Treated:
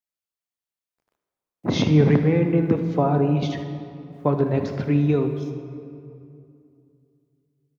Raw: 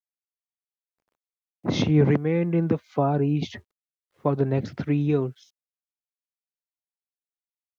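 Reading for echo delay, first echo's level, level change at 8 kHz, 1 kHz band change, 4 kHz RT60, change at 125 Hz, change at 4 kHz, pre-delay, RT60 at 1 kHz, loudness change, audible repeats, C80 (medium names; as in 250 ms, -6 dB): 77 ms, -14.0 dB, no reading, +3.0 dB, 1.5 s, +3.5 dB, +2.5 dB, 22 ms, 2.4 s, +3.0 dB, 1, 9.0 dB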